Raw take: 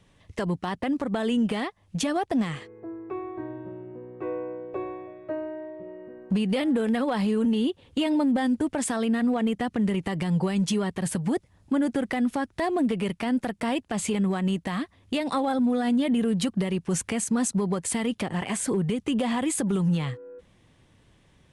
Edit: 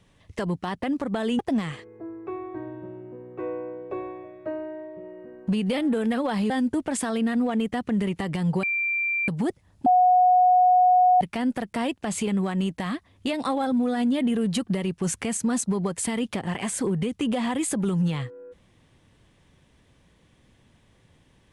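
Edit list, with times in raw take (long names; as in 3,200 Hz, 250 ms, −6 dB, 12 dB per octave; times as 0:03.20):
0:01.39–0:02.22: remove
0:07.33–0:08.37: remove
0:10.50–0:11.15: beep over 2,360 Hz −22.5 dBFS
0:11.73–0:13.08: beep over 730 Hz −14 dBFS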